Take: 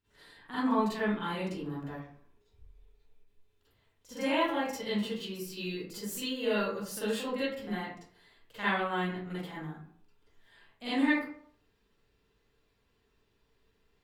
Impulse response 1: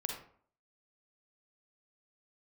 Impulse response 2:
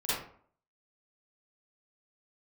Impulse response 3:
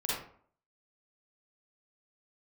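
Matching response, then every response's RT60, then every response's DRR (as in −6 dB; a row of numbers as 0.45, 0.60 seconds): 2; 0.55, 0.55, 0.55 seconds; 1.5, −12.5, −7.0 decibels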